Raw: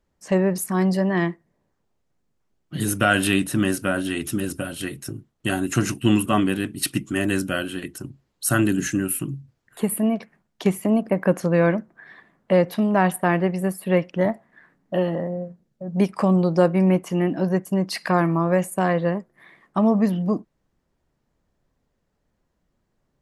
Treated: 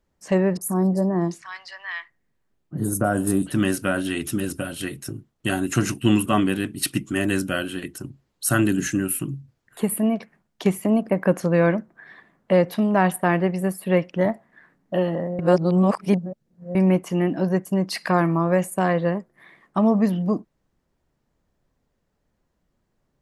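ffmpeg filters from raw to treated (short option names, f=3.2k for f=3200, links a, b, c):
-filter_complex "[0:a]asettb=1/sr,asplit=3[a][b][c];[a]atrim=end=0.574[d];[b]atrim=start=0.57:end=3.52,asetpts=PTS-STARTPTS,afade=t=in:d=0.004:c=qsin,afade=t=out:st=2.946:d=0.004:c=qsin,acrossover=split=1200|6000[e][f][g];[g]adelay=40[h];[f]adelay=740[i];[e][i][h]amix=inputs=3:normalize=0,atrim=end_sample=130095[j];[c]atrim=start=3.516[k];[d][j]acrossfade=d=0.004:c1=hsin:c2=qsin[l];[l][k]acrossfade=d=0.004:c1=qsin:c2=hsin,asplit=3[m][n][o];[m]atrim=end=15.392[p];[n]atrim=start=15.388:end=16.752,asetpts=PTS-STARTPTS,areverse[q];[o]atrim=start=16.748[r];[p][q]acrossfade=d=0.004:c1=hsin:c2=hsin[s];[s][r]acrossfade=d=0.004:c1=hsin:c2=hsin"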